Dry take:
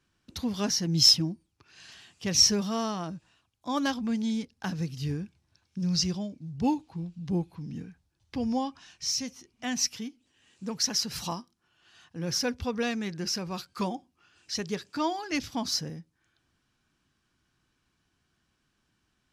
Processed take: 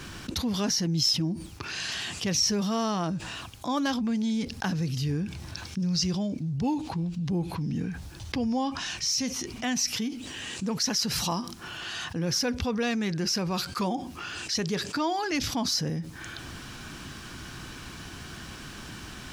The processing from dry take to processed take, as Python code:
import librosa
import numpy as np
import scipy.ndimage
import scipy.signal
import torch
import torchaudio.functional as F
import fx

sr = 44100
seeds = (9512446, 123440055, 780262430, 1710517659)

y = fx.env_flatten(x, sr, amount_pct=70)
y = F.gain(torch.from_numpy(y), -7.0).numpy()